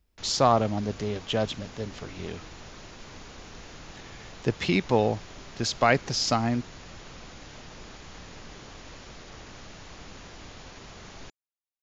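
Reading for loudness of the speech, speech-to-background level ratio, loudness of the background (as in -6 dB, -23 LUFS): -26.5 LUFS, 18.5 dB, -45.0 LUFS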